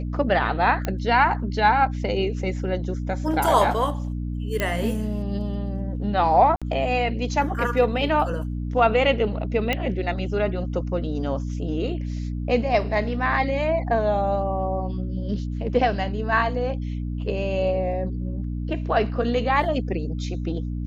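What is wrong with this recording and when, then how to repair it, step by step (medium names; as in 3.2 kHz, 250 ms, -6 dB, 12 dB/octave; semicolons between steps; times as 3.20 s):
hum 60 Hz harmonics 5 -28 dBFS
0.85 s: pop -12 dBFS
4.60 s: pop -10 dBFS
6.56–6.62 s: dropout 56 ms
9.73 s: pop -10 dBFS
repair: de-click; de-hum 60 Hz, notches 5; interpolate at 6.56 s, 56 ms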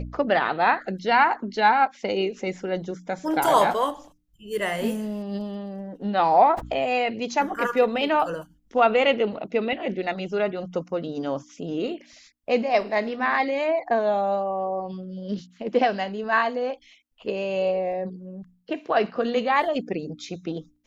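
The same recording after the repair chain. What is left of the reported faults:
nothing left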